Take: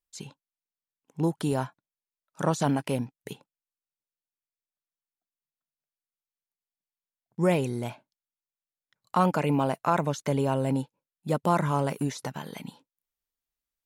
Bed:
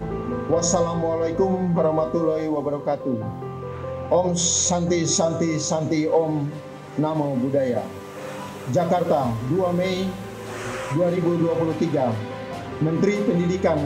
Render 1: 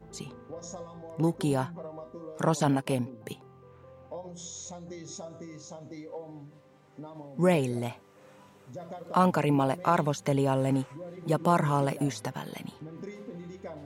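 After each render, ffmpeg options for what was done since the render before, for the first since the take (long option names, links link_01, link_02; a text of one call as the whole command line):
ffmpeg -i in.wav -i bed.wav -filter_complex "[1:a]volume=-21.5dB[link_01];[0:a][link_01]amix=inputs=2:normalize=0" out.wav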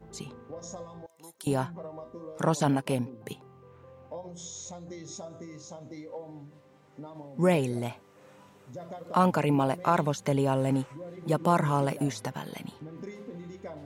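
ffmpeg -i in.wav -filter_complex "[0:a]asettb=1/sr,asplit=3[link_01][link_02][link_03];[link_01]atrim=end=1.064[link_04];[link_02]atrim=start=1.06:end=1.47,asetpts=PTS-STARTPTS,afade=type=in:duration=0.004:curve=qsin,afade=type=out:start_time=0.406:duration=0.004:curve=qsin,aderivative[link_05];[link_03]atrim=start=1.466[link_06];[link_04][link_05]acrossfade=duration=0.004:curve1=hsin:curve2=qsin[link_07];[link_07][link_06]acrossfade=duration=0.004:curve1=qsin:curve2=hsin" out.wav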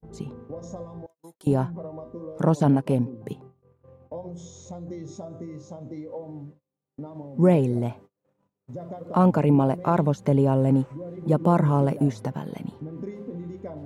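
ffmpeg -i in.wav -af "agate=range=-34dB:threshold=-50dB:ratio=16:detection=peak,tiltshelf=frequency=970:gain=8" out.wav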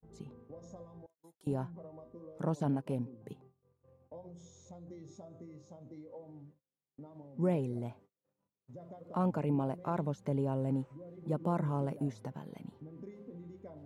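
ffmpeg -i in.wav -af "volume=-13dB" out.wav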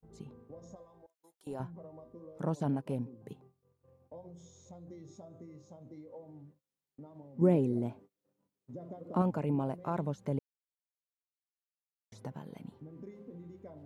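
ffmpeg -i in.wav -filter_complex "[0:a]asettb=1/sr,asplit=3[link_01][link_02][link_03];[link_01]atrim=end=0.754[link_04];[link_02]atrim=start=0.75:end=1.6,asetpts=PTS-STARTPTS,afade=type=in:duration=0.004:curve=qsin,afade=type=out:start_time=0.846:duration=0.004:curve=qsin,equalizer=frequency=130:width=0.58:gain=-14.5[link_05];[link_03]atrim=start=1.596[link_06];[link_04][link_05]acrossfade=duration=0.004:curve1=hsin:curve2=qsin[link_07];[link_07][link_06]acrossfade=duration=0.004:curve1=qsin:curve2=hsin,asettb=1/sr,asplit=3[link_08][link_09][link_10];[link_08]atrim=end=7.414[link_11];[link_09]atrim=start=7.41:end=9.22,asetpts=PTS-STARTPTS,afade=type=in:duration=0.004:curve=qsin,afade=type=out:start_time=1.806:duration=0.004:curve=qsin,equalizer=frequency=290:width_type=o:width=1.5:gain=8.5[link_12];[link_10]atrim=start=9.216[link_13];[link_11][link_12]acrossfade=duration=0.004:curve1=hsin:curve2=qsin[link_14];[link_14][link_13]acrossfade=duration=0.004:curve1=qsin:curve2=hsin,asplit=3[link_15][link_16][link_17];[link_15]atrim=end=10.39,asetpts=PTS-STARTPTS,afade=type=out:start_time=10.386:duration=0.004:curve=hsin[link_18];[link_16]atrim=start=10.39:end=12.12,asetpts=PTS-STARTPTS,volume=0[link_19];[link_17]atrim=start=12.12,asetpts=PTS-STARTPTS,afade=type=in:duration=0.004:curve=hsin[link_20];[link_18][link_19][link_20]concat=n=3:v=0:a=1" out.wav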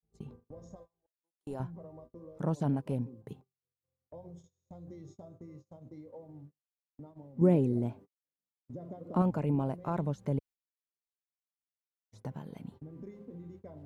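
ffmpeg -i in.wav -af "agate=range=-29dB:threshold=-52dB:ratio=16:detection=peak,lowshelf=frequency=94:gain=10.5" out.wav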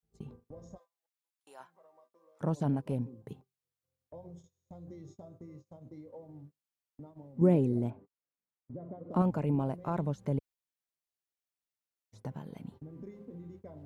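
ffmpeg -i in.wav -filter_complex "[0:a]asplit=3[link_01][link_02][link_03];[link_01]afade=type=out:start_time=0.77:duration=0.02[link_04];[link_02]highpass=1100,afade=type=in:start_time=0.77:duration=0.02,afade=type=out:start_time=2.41:duration=0.02[link_05];[link_03]afade=type=in:start_time=2.41:duration=0.02[link_06];[link_04][link_05][link_06]amix=inputs=3:normalize=0,asettb=1/sr,asplit=3[link_07][link_08][link_09];[link_07]atrim=end=7.904[link_10];[link_08]atrim=start=7.9:end=9.11,asetpts=PTS-STARTPTS,afade=type=in:duration=0.004:curve=qsin,afade=type=out:start_time=1.206:duration=0.004:curve=qsin,lowpass=1900[link_11];[link_09]atrim=start=9.106[link_12];[link_10][link_11]acrossfade=duration=0.004:curve1=hsin:curve2=qsin[link_13];[link_13][link_12]acrossfade=duration=0.004:curve1=qsin:curve2=hsin" out.wav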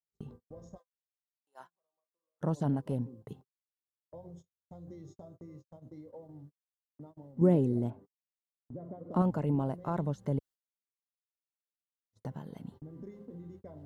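ffmpeg -i in.wav -af "agate=range=-27dB:threshold=-52dB:ratio=16:detection=peak,bandreject=frequency=2400:width=5.5" out.wav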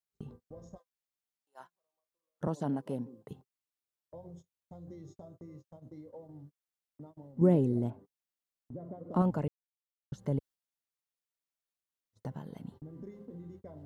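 ffmpeg -i in.wav -filter_complex "[0:a]asettb=1/sr,asplit=3[link_01][link_02][link_03];[link_01]atrim=end=2.474[link_04];[link_02]atrim=start=2.47:end=3.31,asetpts=PTS-STARTPTS,afade=type=in:duration=0.004:curve=qsin,afade=type=out:start_time=0.836:duration=0.004:curve=qsin,highpass=200[link_05];[link_03]atrim=start=3.306[link_06];[link_04][link_05]acrossfade=duration=0.004:curve1=hsin:curve2=qsin[link_07];[link_07][link_06]acrossfade=duration=0.004:curve1=qsin:curve2=hsin,asplit=3[link_08][link_09][link_10];[link_08]atrim=end=9.48,asetpts=PTS-STARTPTS,afade=type=out:start_time=9.476:duration=0.004:curve=hsin[link_11];[link_09]atrim=start=9.48:end=10.12,asetpts=PTS-STARTPTS,volume=0[link_12];[link_10]atrim=start=10.12,asetpts=PTS-STARTPTS,afade=type=in:duration=0.004:curve=hsin[link_13];[link_11][link_12][link_13]concat=n=3:v=0:a=1" out.wav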